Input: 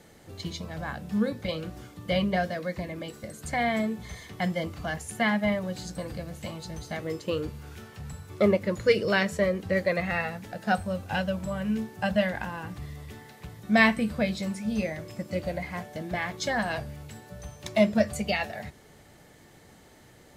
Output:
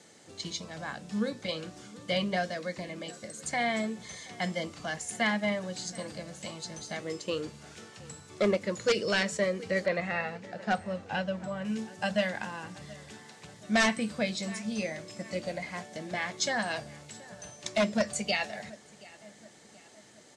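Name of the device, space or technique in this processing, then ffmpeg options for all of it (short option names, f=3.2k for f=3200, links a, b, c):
synthesiser wavefolder: -filter_complex "[0:a]asettb=1/sr,asplit=3[a][b][c];[a]atrim=end=9.864[d];[b]atrim=start=9.86:end=11.65,asetpts=PTS-STARTPTS,afade=t=in:d=0.004:c=qsin,afade=t=out:st=1.786:d=0.004:c=qsin,aemphasis=mode=reproduction:type=75fm[e];[c]atrim=start=11.646[f];[d][e]acrossfade=d=0.004:c1=hsin:c2=qsin[g];[g][f]acrossfade=d=0.004:c1=qsin:c2=hsin,highpass=170,equalizer=f=9.4k:w=0.42:g=11.5,asplit=2[h][i];[i]adelay=726,lowpass=f=3.4k:p=1,volume=-21dB,asplit=2[j][k];[k]adelay=726,lowpass=f=3.4k:p=1,volume=0.49,asplit=2[l][m];[m]adelay=726,lowpass=f=3.4k:p=1,volume=0.49,asplit=2[n][o];[o]adelay=726,lowpass=f=3.4k:p=1,volume=0.49[p];[h][j][l][n][p]amix=inputs=5:normalize=0,aeval=exprs='0.188*(abs(mod(val(0)/0.188+3,4)-2)-1)':c=same,lowpass=f=8k:w=0.5412,lowpass=f=8k:w=1.3066,volume=-3.5dB"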